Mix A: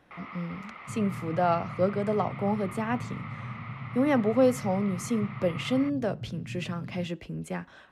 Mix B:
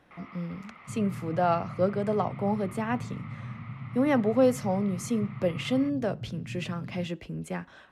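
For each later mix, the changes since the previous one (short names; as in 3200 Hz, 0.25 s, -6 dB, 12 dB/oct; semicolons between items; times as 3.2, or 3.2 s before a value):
first sound -6.0 dB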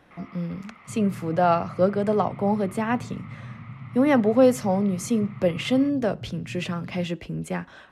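speech +5.0 dB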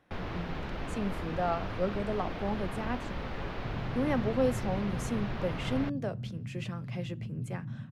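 speech -11.0 dB; first sound: remove double band-pass 1600 Hz, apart 0.73 oct; second sound: entry +2.75 s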